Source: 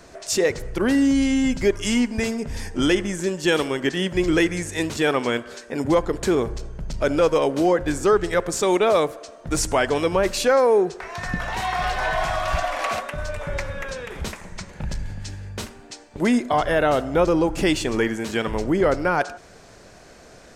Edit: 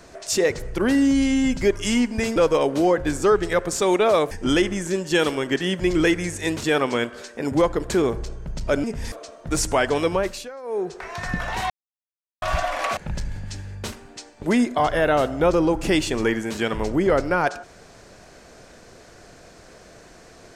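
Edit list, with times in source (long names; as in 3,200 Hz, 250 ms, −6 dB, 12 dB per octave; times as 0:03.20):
0:02.36–0:02.64: swap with 0:07.17–0:09.12
0:10.08–0:11.05: duck −21 dB, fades 0.42 s
0:11.70–0:12.42: silence
0:12.97–0:14.71: remove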